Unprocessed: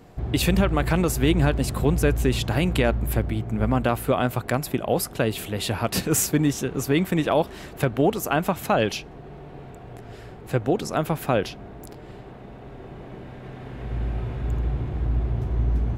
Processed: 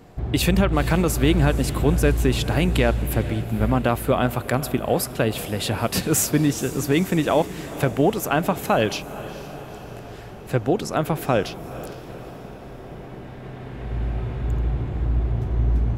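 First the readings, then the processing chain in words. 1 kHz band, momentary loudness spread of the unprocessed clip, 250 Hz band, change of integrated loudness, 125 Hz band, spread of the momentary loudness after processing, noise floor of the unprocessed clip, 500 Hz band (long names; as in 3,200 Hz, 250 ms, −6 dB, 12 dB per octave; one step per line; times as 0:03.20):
+1.5 dB, 20 LU, +2.0 dB, +2.0 dB, +2.0 dB, 18 LU, −42 dBFS, +1.5 dB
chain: feedback delay with all-pass diffusion 464 ms, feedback 59%, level −15 dB
level +1.5 dB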